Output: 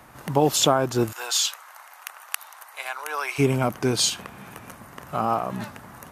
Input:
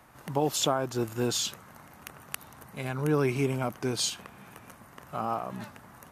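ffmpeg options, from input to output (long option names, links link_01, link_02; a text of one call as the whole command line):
ffmpeg -i in.wav -filter_complex "[0:a]asplit=3[link_01][link_02][link_03];[link_01]afade=type=out:start_time=1.11:duration=0.02[link_04];[link_02]highpass=frequency=760:width=0.5412,highpass=frequency=760:width=1.3066,afade=type=in:start_time=1.11:duration=0.02,afade=type=out:start_time=3.38:duration=0.02[link_05];[link_03]afade=type=in:start_time=3.38:duration=0.02[link_06];[link_04][link_05][link_06]amix=inputs=3:normalize=0,volume=7.5dB" out.wav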